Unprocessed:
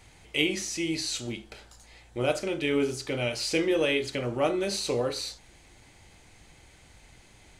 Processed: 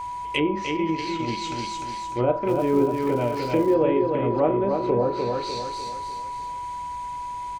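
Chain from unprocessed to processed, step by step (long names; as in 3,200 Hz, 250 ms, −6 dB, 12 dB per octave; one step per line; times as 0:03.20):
repeating echo 300 ms, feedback 44%, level −5 dB
0:00.68–0:01.47: transient designer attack −3 dB, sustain −8 dB
treble cut that deepens with the level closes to 860 Hz, closed at −23.5 dBFS
0:02.46–0:03.73: surface crackle 490 per second −40 dBFS
steady tone 980 Hz −35 dBFS
level +5.5 dB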